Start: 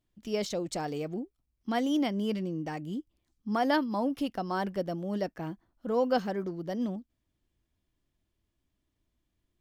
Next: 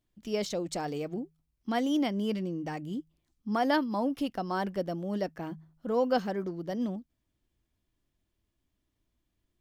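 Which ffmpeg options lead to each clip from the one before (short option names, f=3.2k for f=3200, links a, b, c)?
-af "bandreject=f=79.22:t=h:w=4,bandreject=f=158.44:t=h:w=4"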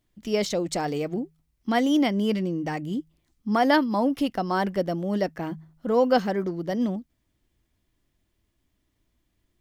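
-af "equalizer=f=2k:t=o:w=0.21:g=4,volume=6.5dB"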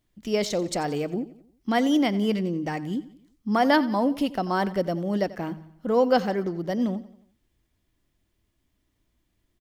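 -af "aecho=1:1:89|178|267|356:0.133|0.0627|0.0295|0.0138"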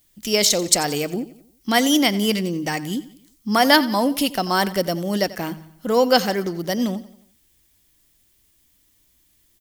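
-af "crystalizer=i=6:c=0,volume=2.5dB"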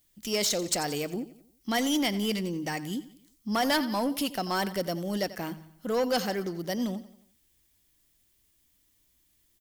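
-af "asoftclip=type=tanh:threshold=-13.5dB,volume=-7dB"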